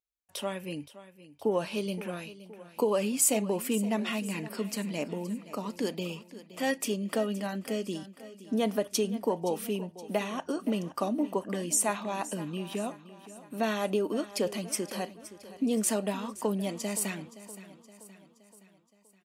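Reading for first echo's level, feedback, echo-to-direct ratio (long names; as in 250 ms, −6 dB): −16.0 dB, 52%, −14.5 dB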